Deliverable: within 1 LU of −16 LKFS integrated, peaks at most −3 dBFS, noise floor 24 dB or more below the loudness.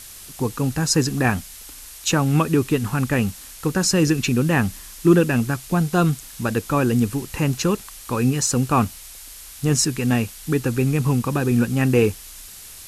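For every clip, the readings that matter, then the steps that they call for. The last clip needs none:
background noise floor −40 dBFS; target noise floor −45 dBFS; integrated loudness −21.0 LKFS; sample peak −3.5 dBFS; target loudness −16.0 LKFS
→ noise reduction from a noise print 6 dB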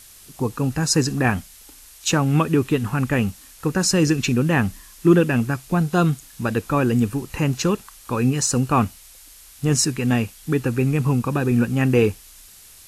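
background noise floor −46 dBFS; integrated loudness −21.0 LKFS; sample peak −3.5 dBFS; target loudness −16.0 LKFS
→ level +5 dB
brickwall limiter −3 dBFS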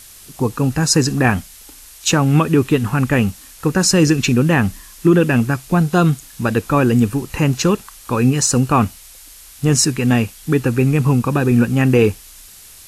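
integrated loudness −16.5 LKFS; sample peak −3.0 dBFS; background noise floor −41 dBFS

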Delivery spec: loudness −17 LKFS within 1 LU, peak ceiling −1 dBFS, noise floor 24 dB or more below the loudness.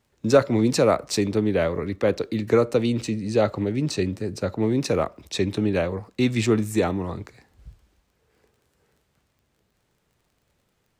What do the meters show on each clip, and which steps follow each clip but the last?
crackle rate 25 per second; integrated loudness −23.5 LKFS; sample peak −4.5 dBFS; target loudness −17.0 LKFS
→ click removal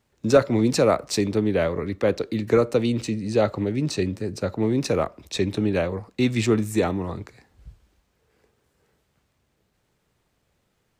crackle rate 0.18 per second; integrated loudness −23.5 LKFS; sample peak −4.5 dBFS; target loudness −17.0 LKFS
→ level +6.5 dB
brickwall limiter −1 dBFS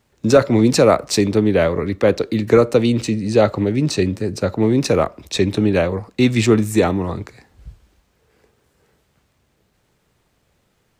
integrated loudness −17.0 LKFS; sample peak −1.0 dBFS; background noise floor −65 dBFS

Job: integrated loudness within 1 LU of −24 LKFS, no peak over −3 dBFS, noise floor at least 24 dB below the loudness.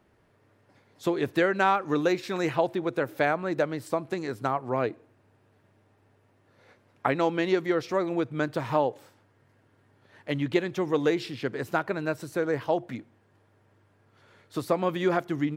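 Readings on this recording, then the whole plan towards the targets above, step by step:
integrated loudness −28.0 LKFS; sample peak −7.5 dBFS; target loudness −24.0 LKFS
→ level +4 dB

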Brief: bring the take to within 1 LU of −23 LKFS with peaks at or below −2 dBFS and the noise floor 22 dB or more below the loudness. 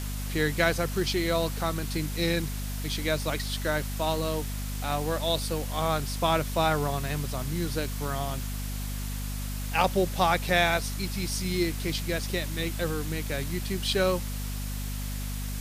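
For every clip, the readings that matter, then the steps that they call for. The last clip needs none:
mains hum 50 Hz; hum harmonics up to 250 Hz; level of the hum −31 dBFS; background noise floor −33 dBFS; target noise floor −51 dBFS; integrated loudness −29.0 LKFS; sample peak −8.5 dBFS; target loudness −23.0 LKFS
→ hum removal 50 Hz, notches 5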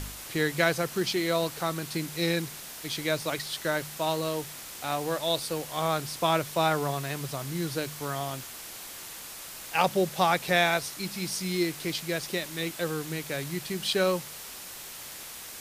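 mains hum none found; background noise floor −42 dBFS; target noise floor −52 dBFS
→ broadband denoise 10 dB, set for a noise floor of −42 dBFS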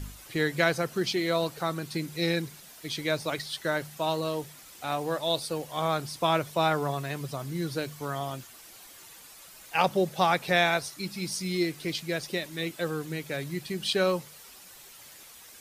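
background noise floor −50 dBFS; target noise floor −52 dBFS
→ broadband denoise 6 dB, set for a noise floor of −50 dBFS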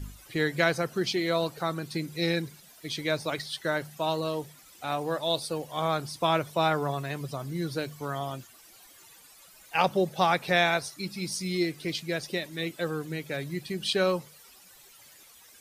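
background noise floor −54 dBFS; integrated loudness −29.5 LKFS; sample peak −9.0 dBFS; target loudness −23.0 LKFS
→ level +6.5 dB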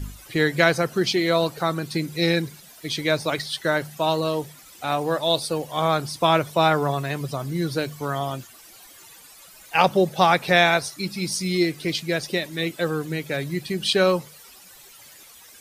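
integrated loudness −23.0 LKFS; sample peak −2.5 dBFS; background noise floor −48 dBFS

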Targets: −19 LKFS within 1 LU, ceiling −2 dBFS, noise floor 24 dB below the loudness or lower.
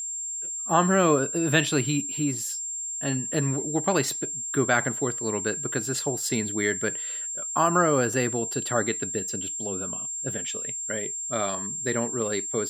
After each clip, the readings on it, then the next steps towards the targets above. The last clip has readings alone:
interfering tone 7,400 Hz; level of the tone −30 dBFS; integrated loudness −25.5 LKFS; sample peak −6.0 dBFS; target loudness −19.0 LKFS
→ notch filter 7,400 Hz, Q 30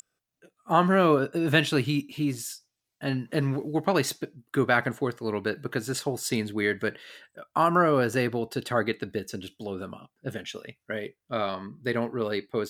interfering tone none found; integrated loudness −27.5 LKFS; sample peak −6.5 dBFS; target loudness −19.0 LKFS
→ level +8.5 dB
brickwall limiter −2 dBFS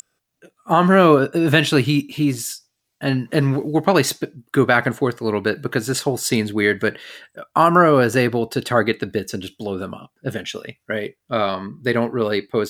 integrated loudness −19.0 LKFS; sample peak −2.0 dBFS; background noise floor −76 dBFS

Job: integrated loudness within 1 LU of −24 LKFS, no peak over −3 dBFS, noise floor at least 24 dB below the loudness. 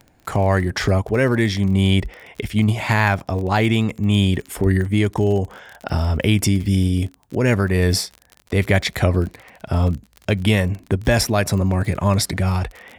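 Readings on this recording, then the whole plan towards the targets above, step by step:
crackle rate 38 per second; integrated loudness −19.5 LKFS; sample peak −2.0 dBFS; target loudness −24.0 LKFS
→ click removal
level −4.5 dB

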